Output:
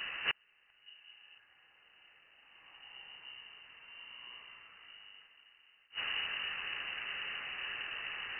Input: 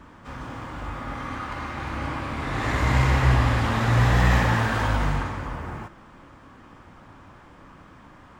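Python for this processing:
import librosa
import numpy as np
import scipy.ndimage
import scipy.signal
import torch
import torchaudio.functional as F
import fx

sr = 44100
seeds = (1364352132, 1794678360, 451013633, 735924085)

p1 = fx.low_shelf(x, sr, hz=340.0, db=11.5, at=(0.86, 1.38))
p2 = p1 + fx.echo_heads(p1, sr, ms=255, heads='first and second', feedback_pct=50, wet_db=-21.0, dry=0)
p3 = fx.gate_flip(p2, sr, shuts_db=-27.0, range_db=-40)
p4 = fx.freq_invert(p3, sr, carrier_hz=2900)
y = F.gain(torch.from_numpy(p4), 6.0).numpy()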